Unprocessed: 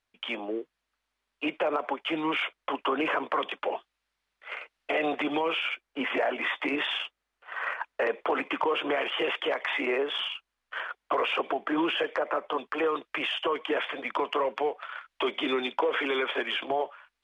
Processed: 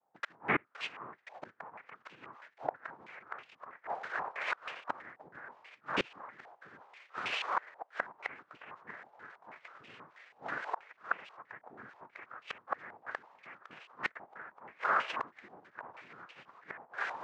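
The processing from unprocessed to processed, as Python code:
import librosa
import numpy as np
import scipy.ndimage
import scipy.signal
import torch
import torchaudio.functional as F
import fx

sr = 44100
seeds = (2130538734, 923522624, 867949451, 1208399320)

y = fx.peak_eq(x, sr, hz=360.0, db=-3.5, octaves=1.7)
y = fx.echo_thinned(y, sr, ms=518, feedback_pct=71, hz=1100.0, wet_db=-11)
y = fx.noise_vocoder(y, sr, seeds[0], bands=3)
y = fx.highpass(y, sr, hz=150.0, slope=6)
y = fx.gate_flip(y, sr, shuts_db=-24.0, range_db=-30)
y = fx.filter_held_lowpass(y, sr, hz=6.2, low_hz=790.0, high_hz=2700.0)
y = y * 10.0 ** (4.0 / 20.0)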